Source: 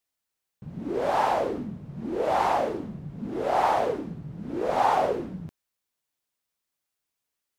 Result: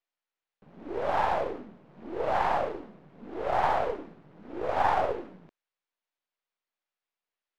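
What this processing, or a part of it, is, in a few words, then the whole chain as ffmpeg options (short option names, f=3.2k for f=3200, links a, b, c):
crystal radio: -af "highpass=390,lowpass=3.2k,aeval=exprs='if(lt(val(0),0),0.447*val(0),val(0))':c=same"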